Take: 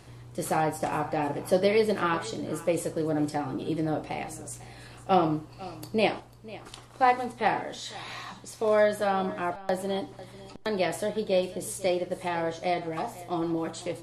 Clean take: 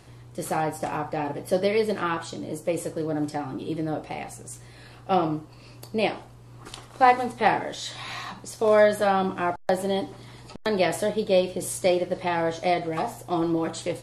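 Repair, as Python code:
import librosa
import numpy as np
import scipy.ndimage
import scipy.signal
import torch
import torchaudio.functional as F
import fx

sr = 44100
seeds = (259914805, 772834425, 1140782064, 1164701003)

y = fx.fix_echo_inverse(x, sr, delay_ms=497, level_db=-18.0)
y = fx.gain(y, sr, db=fx.steps((0.0, 0.0), (6.2, 4.5)))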